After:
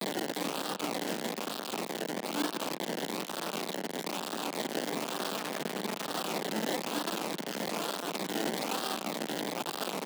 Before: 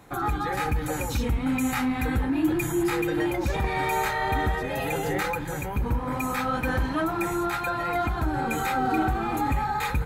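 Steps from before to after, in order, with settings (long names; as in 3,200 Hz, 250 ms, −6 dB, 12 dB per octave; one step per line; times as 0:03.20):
sign of each sample alone
0:03.61–0:04.56: high-shelf EQ 2,700 Hz −6.5 dB
resonators tuned to a chord D2 sus4, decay 0.39 s
sample-and-hold swept by an LFO 31×, swing 60% 1.1 Hz
downsampling to 8,000 Hz
soft clipping −31 dBFS, distortion −23 dB
0:05.36–0:06.07: comb filter 4.7 ms, depth 47%
brickwall limiter −36.5 dBFS, peak gain reduction 5.5 dB
log-companded quantiser 2 bits
Butterworth high-pass 170 Hz 48 dB per octave
far-end echo of a speakerphone 210 ms, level −15 dB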